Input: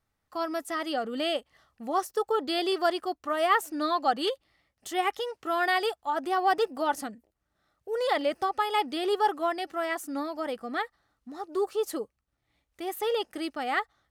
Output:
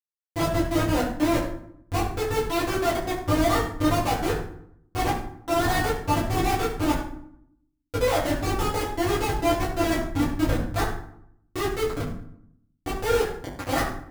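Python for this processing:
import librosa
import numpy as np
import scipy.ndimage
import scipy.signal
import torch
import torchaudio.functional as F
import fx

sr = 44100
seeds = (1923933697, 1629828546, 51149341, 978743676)

p1 = fx.low_shelf(x, sr, hz=270.0, db=-4.5)
p2 = fx.rider(p1, sr, range_db=3, speed_s=0.5)
p3 = p1 + (p2 * librosa.db_to_amplitude(-1.5))
p4 = fx.schmitt(p3, sr, flips_db=-21.0)
p5 = fx.rev_fdn(p4, sr, rt60_s=0.68, lf_ratio=1.45, hf_ratio=0.65, size_ms=59.0, drr_db=-9.5)
y = p5 * librosa.db_to_amplitude(-6.5)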